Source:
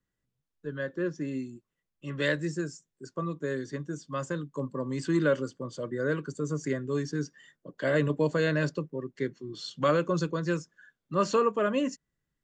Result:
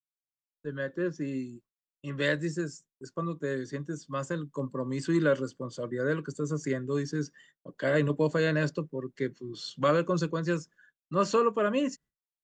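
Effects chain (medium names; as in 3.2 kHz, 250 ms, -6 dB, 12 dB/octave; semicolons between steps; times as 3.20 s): expander -49 dBFS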